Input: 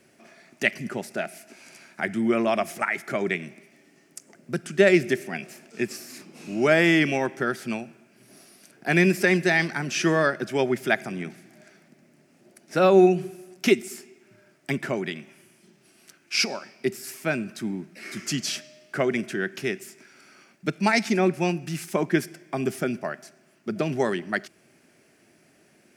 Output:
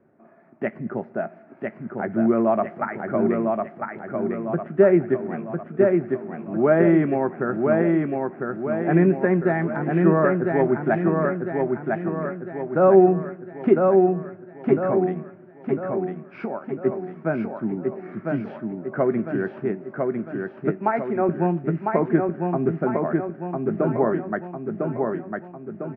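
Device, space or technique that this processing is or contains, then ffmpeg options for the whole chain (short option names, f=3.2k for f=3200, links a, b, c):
action camera in a waterproof case: -filter_complex "[0:a]asettb=1/sr,asplit=3[a][b][c];[a]atrim=end=20.764[d];[b]atrim=start=20.76:end=21.29,asetpts=PTS-STARTPTS,afade=t=in:d=0.004:c=qsin,afade=t=out:st=0.526:d=0.004:c=qsin,bass=f=250:g=-15,treble=f=4k:g=-4[e];[c]atrim=start=21.286[f];[d][e]acrossfade=d=0.004:c1=hsin:c2=qsin[g];[g][f]acrossfade=d=0.004:c1=qsin:c2=hsin,lowpass=f=1.3k:w=0.5412,lowpass=f=1.3k:w=1.3066,asplit=2[h][i];[i]adelay=18,volume=-14dB[j];[h][j]amix=inputs=2:normalize=0,aecho=1:1:1002|2004|3006|4008|5010|6012|7014:0.668|0.341|0.174|0.0887|0.0452|0.0231|0.0118,dynaudnorm=f=170:g=5:m=3dB" -ar 32000 -c:a aac -b:a 48k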